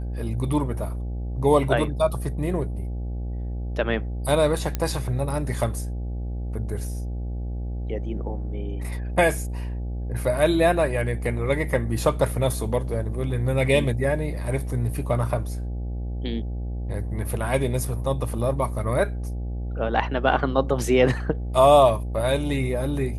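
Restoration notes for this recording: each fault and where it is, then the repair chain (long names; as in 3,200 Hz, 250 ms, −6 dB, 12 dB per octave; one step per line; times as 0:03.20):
mains buzz 60 Hz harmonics 14 −29 dBFS
0:04.75: click −11 dBFS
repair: click removal
hum removal 60 Hz, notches 14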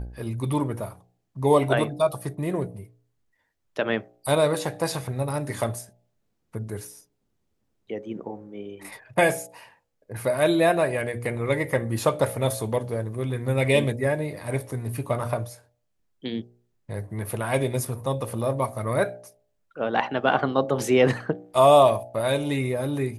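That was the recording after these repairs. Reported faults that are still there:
none of them is left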